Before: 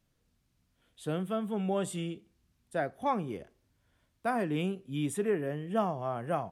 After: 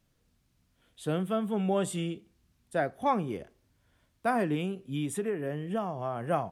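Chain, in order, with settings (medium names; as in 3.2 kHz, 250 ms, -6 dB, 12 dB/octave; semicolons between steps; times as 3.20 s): 4.54–6.21 s: compression, threshold -31 dBFS, peak gain reduction 8 dB; trim +3 dB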